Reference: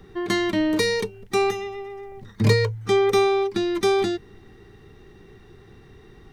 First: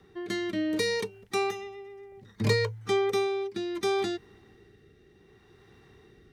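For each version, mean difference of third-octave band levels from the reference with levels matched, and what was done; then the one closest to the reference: 1.5 dB: HPF 44 Hz; low shelf 340 Hz -5.5 dB; rotary speaker horn 0.65 Hz; gain -3.5 dB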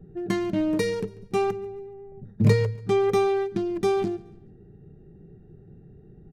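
5.0 dB: Wiener smoothing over 41 samples; fifteen-band EQ 160 Hz +11 dB, 630 Hz +4 dB, 4000 Hz -5 dB; feedback echo 0.142 s, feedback 37%, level -21.5 dB; gain -3.5 dB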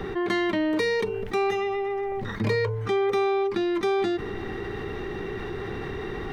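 9.0 dB: tone controls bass -8 dB, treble -13 dB; de-hum 148.8 Hz, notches 10; fast leveller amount 70%; gain -5 dB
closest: first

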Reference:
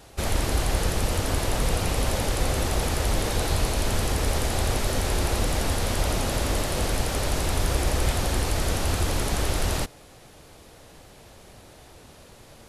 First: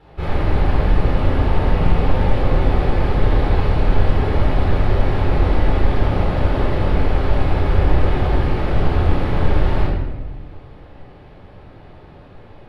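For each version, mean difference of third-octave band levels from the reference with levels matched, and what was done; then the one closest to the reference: 9.5 dB: air absorption 410 m; shoebox room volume 710 m³, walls mixed, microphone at 4.1 m; gain -2.5 dB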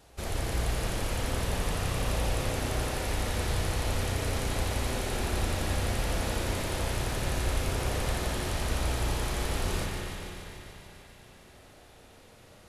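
2.5 dB: thin delay 0.145 s, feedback 75%, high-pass 1400 Hz, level -6 dB; spring tank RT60 3.3 s, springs 33/50 ms, chirp 70 ms, DRR -1 dB; gain -9 dB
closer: second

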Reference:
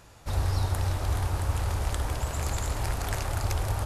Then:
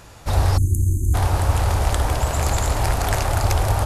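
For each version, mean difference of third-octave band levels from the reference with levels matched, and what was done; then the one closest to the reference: 2.5 dB: spectral delete 0.57–1.14, 380–6100 Hz; dynamic EQ 720 Hz, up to +4 dB, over -51 dBFS, Q 1.8; gain +9 dB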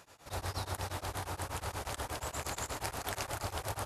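4.5 dB: HPF 320 Hz 6 dB/oct; beating tremolo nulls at 8.4 Hz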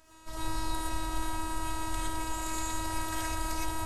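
6.5 dB: robotiser 319 Hz; non-linear reverb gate 0.14 s rising, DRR -6 dB; gain -5.5 dB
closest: first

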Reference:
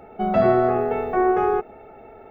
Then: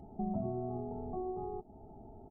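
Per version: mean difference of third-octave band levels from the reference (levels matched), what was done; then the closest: 8.0 dB: compressor 3:1, threshold -31 dBFS, peak gain reduction 13.5 dB; Gaussian blur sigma 14 samples; comb 1 ms, depth 81%; gain -3 dB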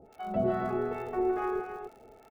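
4.5 dB: crackle 81/s -35 dBFS; harmonic tremolo 2.4 Hz, depth 100%, crossover 710 Hz; on a send: loudspeakers at several distances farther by 56 m -7 dB, 93 m -7 dB; on the sum: gain -7 dB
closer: second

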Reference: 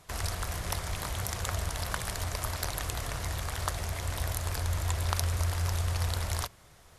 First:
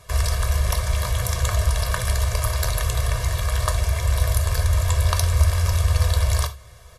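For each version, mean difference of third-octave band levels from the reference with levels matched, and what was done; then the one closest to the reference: 3.0 dB: bell 69 Hz +15 dB 0.24 oct; comb 1.8 ms, depth 82%; non-linear reverb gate 0.11 s falling, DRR 7 dB; gain +4.5 dB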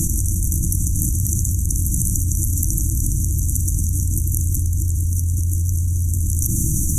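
19.5 dB: FFT band-reject 340–5800 Hz; maximiser +22 dB; fast leveller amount 100%; gain -13 dB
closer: first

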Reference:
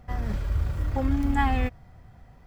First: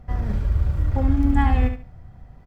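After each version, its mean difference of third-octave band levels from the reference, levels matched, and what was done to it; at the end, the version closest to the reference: 3.5 dB: tilt -1.5 dB/oct; on a send: feedback echo 71 ms, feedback 24%, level -8 dB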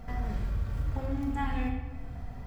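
5.5 dB: compressor 2.5:1, threshold -43 dBFS, peak gain reduction 16 dB; shoebox room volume 950 m³, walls mixed, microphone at 1.6 m; gain +4 dB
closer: first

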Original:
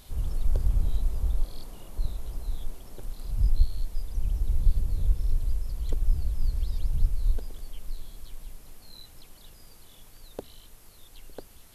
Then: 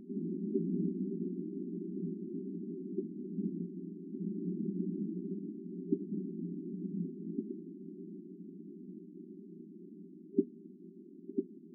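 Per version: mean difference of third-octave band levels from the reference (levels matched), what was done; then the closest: 23.5 dB: FFT band-pass 170–400 Hz; gain +15 dB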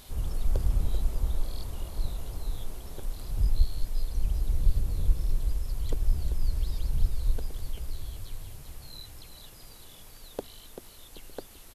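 2.5 dB: low shelf 160 Hz -5 dB; on a send: frequency-shifting echo 0.388 s, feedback 38%, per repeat -41 Hz, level -8.5 dB; on the sum: gain +3 dB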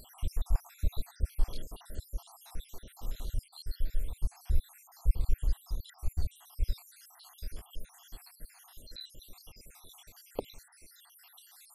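12.0 dB: random spectral dropouts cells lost 71%; low shelf 450 Hz -5.5 dB; gain +5 dB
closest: second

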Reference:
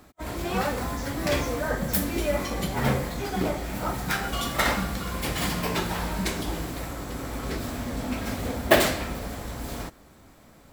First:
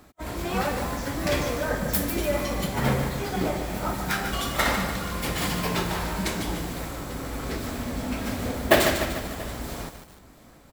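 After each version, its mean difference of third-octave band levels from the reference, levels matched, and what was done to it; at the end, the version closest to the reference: 1.5 dB: echo 0.684 s -22 dB; lo-fi delay 0.148 s, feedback 55%, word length 7-bit, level -7.5 dB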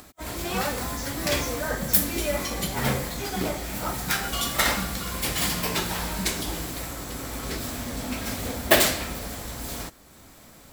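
3.0 dB: high shelf 2800 Hz +9.5 dB; upward compressor, threshold -41 dBFS; gain -2 dB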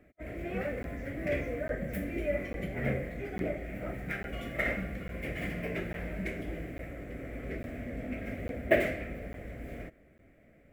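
7.5 dB: EQ curve 240 Hz 0 dB, 650 Hz +3 dB, 920 Hz -20 dB, 2100 Hz +6 dB, 4100 Hz -21 dB, 15000 Hz -14 dB; crackling interface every 0.85 s, samples 512, zero, from 0.83; gain -7.5 dB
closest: first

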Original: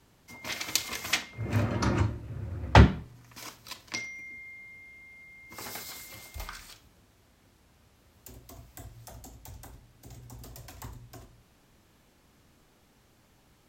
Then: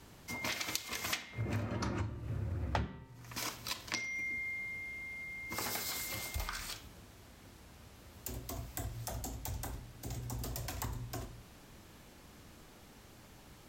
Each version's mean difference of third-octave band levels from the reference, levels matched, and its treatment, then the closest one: 10.5 dB: de-hum 130 Hz, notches 30; compressor 8:1, threshold -41 dBFS, peak gain reduction 28.5 dB; gain +6.5 dB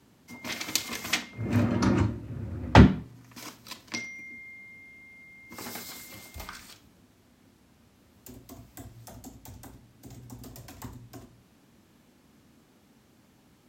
2.0 dB: HPF 64 Hz; bell 240 Hz +8 dB 1 oct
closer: second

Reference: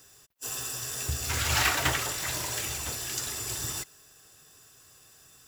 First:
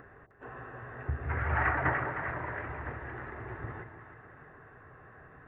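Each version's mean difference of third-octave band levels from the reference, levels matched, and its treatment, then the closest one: 18.0 dB: elliptic low-pass 1900 Hz, stop band 60 dB; upward compressor, threshold -43 dBFS; on a send: split-band echo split 760 Hz, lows 0.164 s, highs 0.308 s, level -8 dB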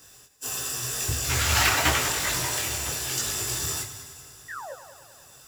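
2.5 dB: painted sound fall, 4.48–4.73, 490–2000 Hz -41 dBFS; multi-head echo 98 ms, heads first and second, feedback 60%, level -15 dB; detuned doubles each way 31 cents; gain +8 dB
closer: second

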